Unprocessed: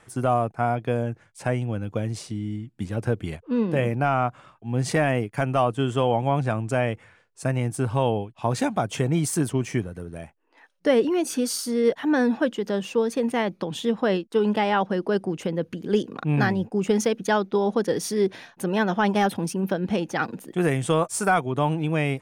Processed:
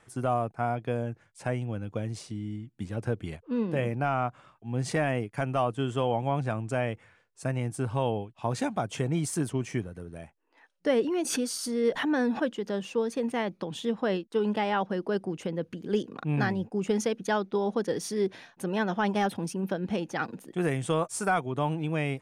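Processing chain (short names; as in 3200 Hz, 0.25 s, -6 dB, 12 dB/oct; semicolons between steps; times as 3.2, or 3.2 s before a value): LPF 12000 Hz 12 dB/oct; 11.2–12.42 backwards sustainer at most 61 dB/s; gain -5.5 dB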